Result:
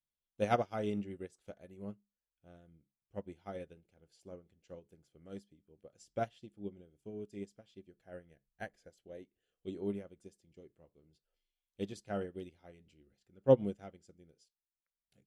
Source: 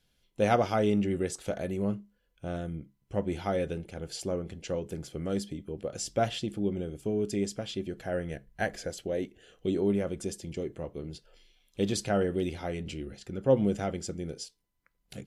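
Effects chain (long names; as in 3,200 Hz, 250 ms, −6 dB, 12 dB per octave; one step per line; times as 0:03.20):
expander for the loud parts 2.5 to 1, over −37 dBFS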